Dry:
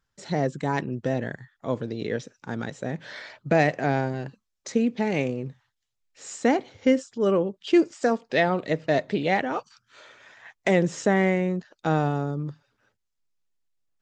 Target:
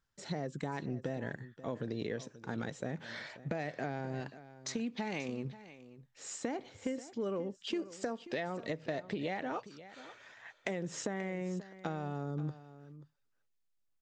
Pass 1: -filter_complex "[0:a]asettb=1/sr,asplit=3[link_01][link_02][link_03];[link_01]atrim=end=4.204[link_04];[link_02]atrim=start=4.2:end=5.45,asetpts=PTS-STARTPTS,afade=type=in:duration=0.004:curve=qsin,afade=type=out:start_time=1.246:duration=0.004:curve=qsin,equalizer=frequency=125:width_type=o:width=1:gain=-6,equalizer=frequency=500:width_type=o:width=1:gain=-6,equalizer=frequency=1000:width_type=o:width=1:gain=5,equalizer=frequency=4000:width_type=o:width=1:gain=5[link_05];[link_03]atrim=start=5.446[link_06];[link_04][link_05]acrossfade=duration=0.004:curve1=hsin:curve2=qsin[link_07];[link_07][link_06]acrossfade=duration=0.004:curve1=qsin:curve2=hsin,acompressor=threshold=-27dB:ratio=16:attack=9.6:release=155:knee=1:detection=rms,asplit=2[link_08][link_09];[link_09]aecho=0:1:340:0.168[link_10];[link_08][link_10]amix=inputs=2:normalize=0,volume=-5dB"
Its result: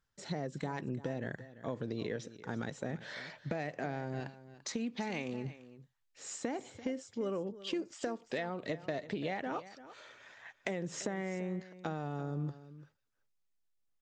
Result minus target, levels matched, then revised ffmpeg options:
echo 194 ms early
-filter_complex "[0:a]asettb=1/sr,asplit=3[link_01][link_02][link_03];[link_01]atrim=end=4.204[link_04];[link_02]atrim=start=4.2:end=5.45,asetpts=PTS-STARTPTS,afade=type=in:duration=0.004:curve=qsin,afade=type=out:start_time=1.246:duration=0.004:curve=qsin,equalizer=frequency=125:width_type=o:width=1:gain=-6,equalizer=frequency=500:width_type=o:width=1:gain=-6,equalizer=frequency=1000:width_type=o:width=1:gain=5,equalizer=frequency=4000:width_type=o:width=1:gain=5[link_05];[link_03]atrim=start=5.446[link_06];[link_04][link_05]acrossfade=duration=0.004:curve1=hsin:curve2=qsin[link_07];[link_07][link_06]acrossfade=duration=0.004:curve1=qsin:curve2=hsin,acompressor=threshold=-27dB:ratio=16:attack=9.6:release=155:knee=1:detection=rms,asplit=2[link_08][link_09];[link_09]aecho=0:1:534:0.168[link_10];[link_08][link_10]amix=inputs=2:normalize=0,volume=-5dB"

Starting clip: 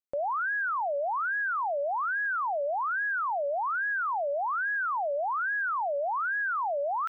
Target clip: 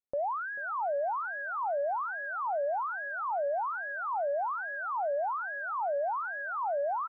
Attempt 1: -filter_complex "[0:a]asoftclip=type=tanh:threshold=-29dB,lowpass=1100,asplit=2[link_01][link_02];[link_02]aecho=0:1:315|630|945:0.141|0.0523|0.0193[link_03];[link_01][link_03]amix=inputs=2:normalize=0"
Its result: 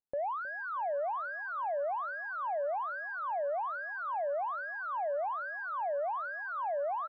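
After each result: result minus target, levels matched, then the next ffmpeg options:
soft clipping: distortion +16 dB; echo 124 ms early
-filter_complex "[0:a]asoftclip=type=tanh:threshold=-19.5dB,lowpass=1100,asplit=2[link_01][link_02];[link_02]aecho=0:1:315|630|945:0.141|0.0523|0.0193[link_03];[link_01][link_03]amix=inputs=2:normalize=0"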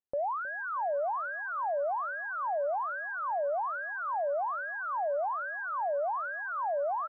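echo 124 ms early
-filter_complex "[0:a]asoftclip=type=tanh:threshold=-19.5dB,lowpass=1100,asplit=2[link_01][link_02];[link_02]aecho=0:1:439|878|1317:0.141|0.0523|0.0193[link_03];[link_01][link_03]amix=inputs=2:normalize=0"

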